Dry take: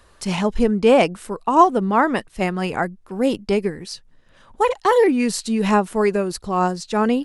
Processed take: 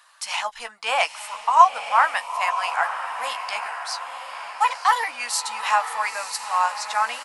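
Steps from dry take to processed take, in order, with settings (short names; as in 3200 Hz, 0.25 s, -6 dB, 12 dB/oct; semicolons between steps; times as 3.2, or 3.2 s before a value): inverse Chebyshev high-pass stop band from 410 Hz, stop band 40 dB; doubler 13 ms -8 dB; diffused feedback echo 0.947 s, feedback 53%, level -9 dB; gain +1.5 dB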